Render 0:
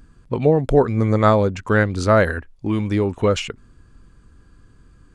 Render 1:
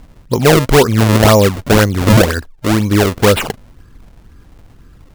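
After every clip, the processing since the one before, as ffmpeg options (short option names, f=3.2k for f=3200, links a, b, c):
-af "apsyclip=9.5dB,acrusher=samples=33:mix=1:aa=0.000001:lfo=1:lforange=52.8:lforate=2,volume=-1.5dB"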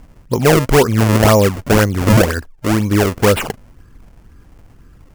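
-af "equalizer=f=3.8k:w=2.9:g=-5.5,volume=-2dB"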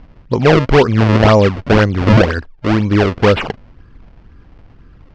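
-af "lowpass=f=4.5k:w=0.5412,lowpass=f=4.5k:w=1.3066,volume=1.5dB"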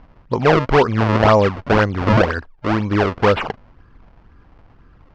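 -af "equalizer=f=1k:w=0.78:g=7,volume=-6.5dB"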